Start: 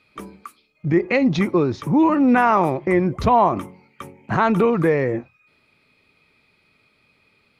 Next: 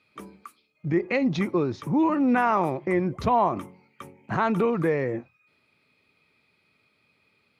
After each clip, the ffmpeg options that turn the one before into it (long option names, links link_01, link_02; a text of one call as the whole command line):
ffmpeg -i in.wav -af "highpass=76,volume=-6dB" out.wav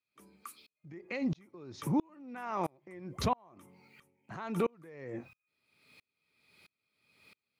ffmpeg -i in.wav -af "highshelf=frequency=4200:gain=12,acompressor=threshold=-31dB:ratio=6,aeval=exprs='val(0)*pow(10,-36*if(lt(mod(-1.5*n/s,1),2*abs(-1.5)/1000),1-mod(-1.5*n/s,1)/(2*abs(-1.5)/1000),(mod(-1.5*n/s,1)-2*abs(-1.5)/1000)/(1-2*abs(-1.5)/1000))/20)':channel_layout=same,volume=6dB" out.wav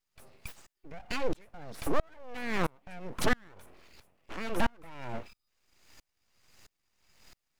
ffmpeg -i in.wav -af "aeval=exprs='abs(val(0))':channel_layout=same,volume=6dB" out.wav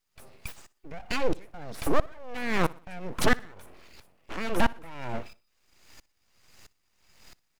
ffmpeg -i in.wav -af "aecho=1:1:61|122|183:0.0794|0.0334|0.014,volume=4.5dB" out.wav